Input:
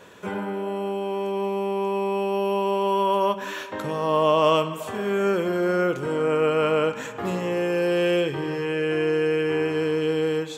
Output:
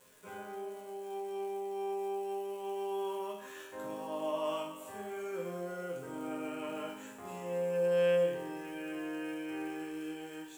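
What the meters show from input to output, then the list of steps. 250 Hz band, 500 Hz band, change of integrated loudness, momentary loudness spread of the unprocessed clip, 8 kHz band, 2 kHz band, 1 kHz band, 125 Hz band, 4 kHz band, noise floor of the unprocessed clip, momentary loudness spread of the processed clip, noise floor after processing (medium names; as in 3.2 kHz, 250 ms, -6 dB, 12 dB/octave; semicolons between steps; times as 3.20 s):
-14.0 dB, -12.5 dB, -13.5 dB, 8 LU, -8.5 dB, -15.0 dB, -15.5 dB, -17.5 dB, -16.5 dB, -35 dBFS, 13 LU, -49 dBFS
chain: crackle 410 per s -33 dBFS; resonant high shelf 6.3 kHz +6 dB, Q 1.5; hum notches 50/100/150/200/250/300/350 Hz; chord resonator F2 minor, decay 0.68 s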